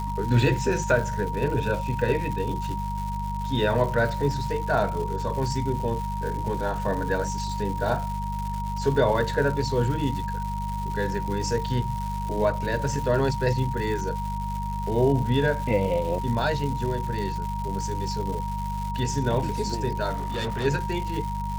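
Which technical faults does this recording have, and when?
crackle 300/s -32 dBFS
hum 50 Hz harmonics 4 -31 dBFS
tone 940 Hz -31 dBFS
20.12–20.66 clipped -24.5 dBFS

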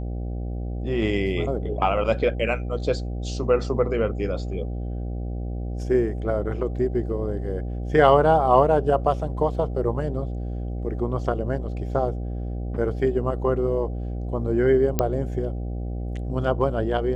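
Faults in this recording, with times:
buzz 60 Hz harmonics 13 -29 dBFS
14.99 pop -7 dBFS

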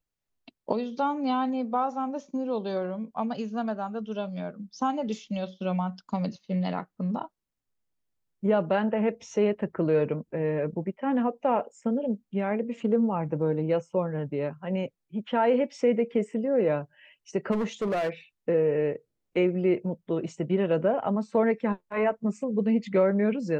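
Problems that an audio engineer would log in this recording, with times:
17.51–18.09 clipped -24 dBFS

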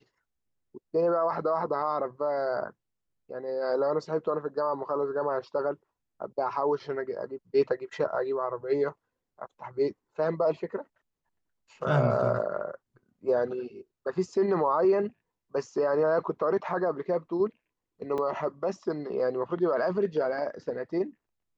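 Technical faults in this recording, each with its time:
18.18 gap 3.4 ms

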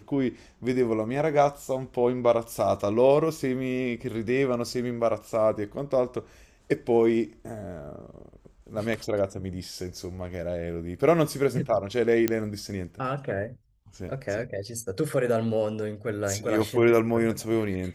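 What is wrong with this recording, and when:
12.28 pop -9 dBFS

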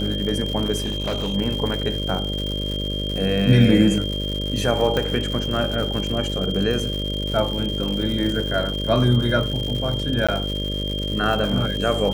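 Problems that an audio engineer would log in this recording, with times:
buzz 50 Hz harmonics 12 -27 dBFS
crackle 200/s -27 dBFS
tone 3200 Hz -28 dBFS
0.76–1.35 clipped -20 dBFS
4.97 pop -10 dBFS
10.27–10.29 gap 16 ms

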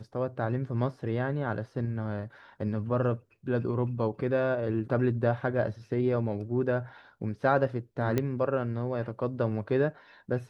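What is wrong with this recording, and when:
8.18 pop -14 dBFS

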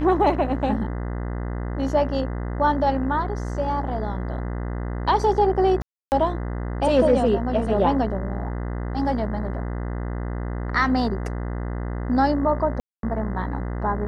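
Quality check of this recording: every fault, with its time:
buzz 60 Hz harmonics 34 -28 dBFS
5.82–6.12 gap 0.299 s
12.8–13.03 gap 0.232 s

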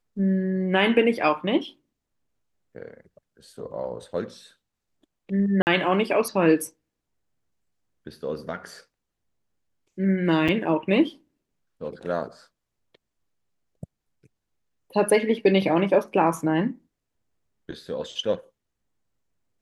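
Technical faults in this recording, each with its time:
5.62–5.67 gap 49 ms
10.48–10.49 gap 6.2 ms

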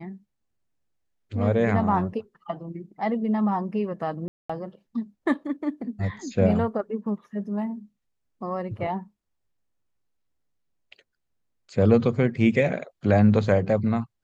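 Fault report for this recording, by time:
4.28–4.5 gap 0.215 s

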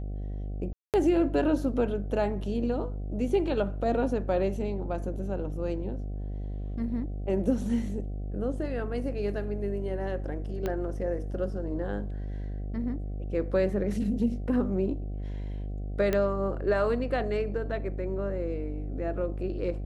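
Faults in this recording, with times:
buzz 50 Hz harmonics 15 -34 dBFS
0.73–0.94 gap 0.208 s
10.66 pop -18 dBFS
16.13 pop -14 dBFS

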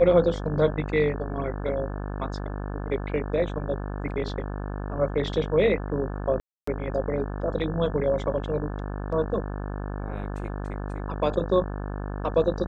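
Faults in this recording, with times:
buzz 50 Hz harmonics 35 -32 dBFS
6.4–6.67 gap 0.274 s

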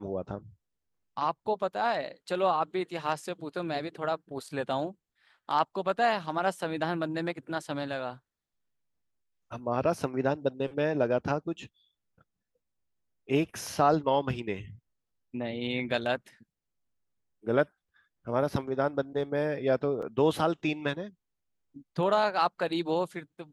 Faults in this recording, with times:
20.02–20.03 gap 5.2 ms

